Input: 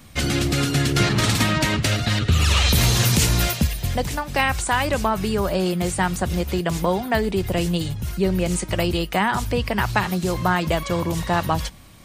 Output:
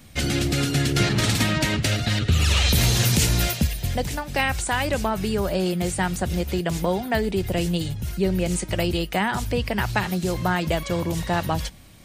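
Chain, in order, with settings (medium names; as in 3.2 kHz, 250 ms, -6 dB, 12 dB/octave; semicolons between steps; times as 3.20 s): peaking EQ 1.1 kHz -5.5 dB 0.54 oct; trim -1.5 dB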